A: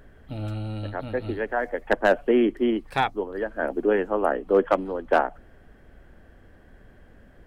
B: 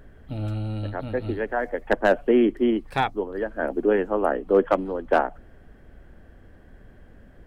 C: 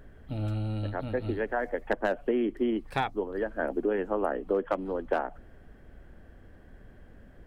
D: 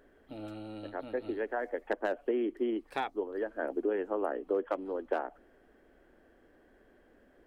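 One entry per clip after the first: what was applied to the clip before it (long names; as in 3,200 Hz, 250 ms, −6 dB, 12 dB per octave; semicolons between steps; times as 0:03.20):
low-shelf EQ 430 Hz +4 dB; level −1 dB
downward compressor 6 to 1, threshold −21 dBFS, peak gain reduction 8.5 dB; level −2.5 dB
low shelf with overshoot 210 Hz −13.5 dB, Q 1.5; level −5.5 dB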